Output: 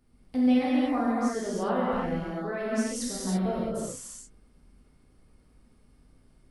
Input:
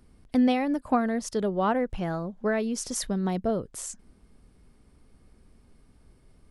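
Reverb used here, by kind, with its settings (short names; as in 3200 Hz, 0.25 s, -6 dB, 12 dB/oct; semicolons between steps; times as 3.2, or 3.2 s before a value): non-linear reverb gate 0.37 s flat, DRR -8 dB; gain -10 dB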